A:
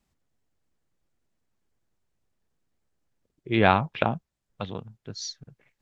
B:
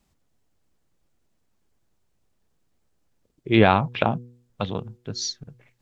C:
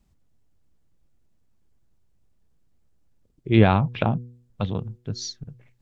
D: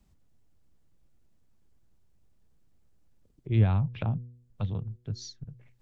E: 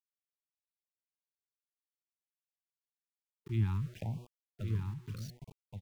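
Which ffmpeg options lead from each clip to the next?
-af "equalizer=f=1.8k:w=1.6:g=-2.5,bandreject=f=121.5:t=h:w=4,bandreject=f=243:t=h:w=4,bandreject=f=364.5:t=h:w=4,bandreject=f=486:t=h:w=4,alimiter=limit=-8dB:level=0:latency=1:release=227,volume=6.5dB"
-af "lowshelf=f=220:g=12,volume=-4.5dB"
-filter_complex "[0:a]acrossover=split=130[a][b];[b]acompressor=threshold=-60dB:ratio=1.5[c];[a][c]amix=inputs=2:normalize=0"
-af "aeval=exprs='val(0)*gte(abs(val(0)),0.00944)':c=same,aecho=1:1:1126:0.501,afftfilt=real='re*(1-between(b*sr/1024,550*pow(1700/550,0.5+0.5*sin(2*PI*0.76*pts/sr))/1.41,550*pow(1700/550,0.5+0.5*sin(2*PI*0.76*pts/sr))*1.41))':imag='im*(1-between(b*sr/1024,550*pow(1700/550,0.5+0.5*sin(2*PI*0.76*pts/sr))/1.41,550*pow(1700/550,0.5+0.5*sin(2*PI*0.76*pts/sr))*1.41))':win_size=1024:overlap=0.75,volume=-8.5dB"

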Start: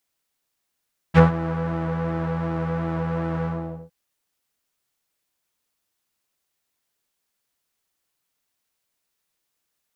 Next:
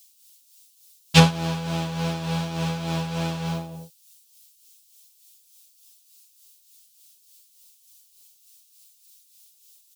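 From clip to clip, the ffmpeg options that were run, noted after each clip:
-af "tremolo=f=3.4:d=0.54,aecho=1:1:7.3:0.65,aexciter=amount=14.3:drive=2.7:freq=2.7k,volume=-1dB"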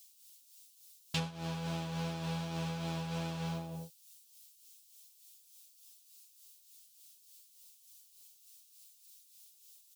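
-af "acompressor=threshold=-31dB:ratio=5,volume=-4.5dB"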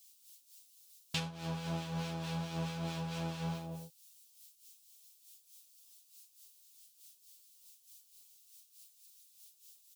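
-filter_complex "[0:a]acrossover=split=1400[a][b];[a]aeval=exprs='val(0)*(1-0.5/2+0.5/2*cos(2*PI*4.6*n/s))':c=same[c];[b]aeval=exprs='val(0)*(1-0.5/2-0.5/2*cos(2*PI*4.6*n/s))':c=same[d];[c][d]amix=inputs=2:normalize=0,volume=1.5dB"

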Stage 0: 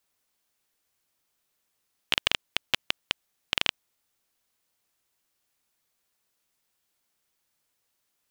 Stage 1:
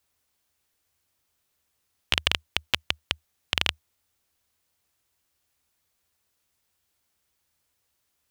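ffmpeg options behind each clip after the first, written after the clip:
-af "equalizer=f=77:w=2.2:g=14.5,volume=1.5dB"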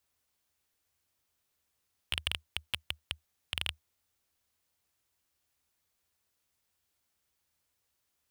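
-af "asoftclip=type=tanh:threshold=-12dB,volume=-4.5dB"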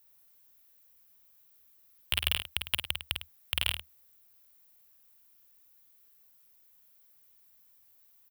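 -filter_complex "[0:a]aexciter=amount=4.1:drive=6.3:freq=11k,asplit=2[a][b];[b]aecho=0:1:46|51|104:0.126|0.501|0.237[c];[a][c]amix=inputs=2:normalize=0,volume=3.5dB"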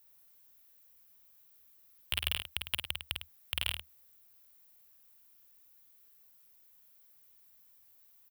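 -af "alimiter=limit=-11.5dB:level=0:latency=1:release=204"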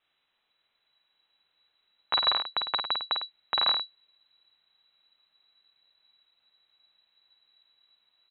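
-af "asubboost=boost=11:cutoff=140,lowpass=f=3.4k:t=q:w=0.5098,lowpass=f=3.4k:t=q:w=0.6013,lowpass=f=3.4k:t=q:w=0.9,lowpass=f=3.4k:t=q:w=2.563,afreqshift=-4000,volume=4.5dB"

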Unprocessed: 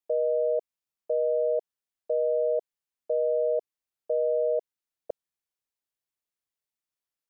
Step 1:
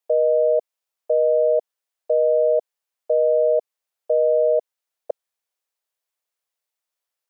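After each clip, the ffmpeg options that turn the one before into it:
-af "lowshelf=f=370:t=q:w=1.5:g=-11,volume=6dB"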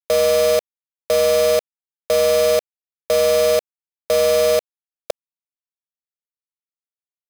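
-af "acrusher=bits=3:mix=0:aa=0.000001,volume=1.5dB"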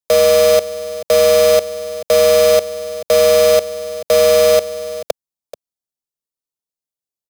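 -filter_complex "[0:a]aecho=1:1:434:0.2,acrossover=split=140|1100|3200[a][b][c][d];[c]aeval=exprs='sgn(val(0))*max(abs(val(0))-0.00282,0)':c=same[e];[a][b][e][d]amix=inputs=4:normalize=0,volume=5dB"

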